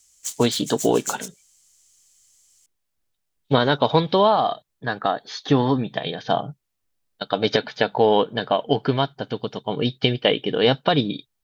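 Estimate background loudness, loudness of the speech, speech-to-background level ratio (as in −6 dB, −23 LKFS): −32.0 LKFS, −22.0 LKFS, 10.0 dB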